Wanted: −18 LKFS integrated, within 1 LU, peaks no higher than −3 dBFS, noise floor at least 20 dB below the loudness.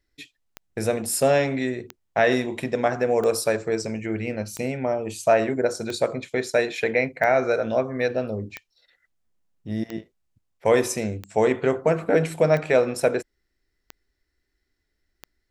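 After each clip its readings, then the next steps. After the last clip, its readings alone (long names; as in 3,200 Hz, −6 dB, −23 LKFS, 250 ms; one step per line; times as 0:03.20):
number of clicks 12; integrated loudness −23.5 LKFS; sample peak −7.0 dBFS; target loudness −18.0 LKFS
→ click removal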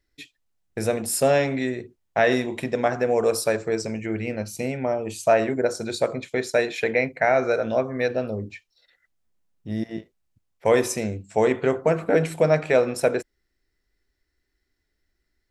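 number of clicks 0; integrated loudness −23.5 LKFS; sample peak −7.0 dBFS; target loudness −18.0 LKFS
→ level +5.5 dB
brickwall limiter −3 dBFS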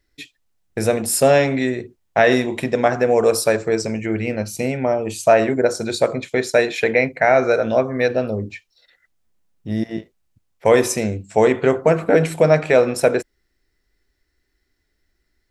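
integrated loudness −18.5 LKFS; sample peak −3.0 dBFS; background noise floor −71 dBFS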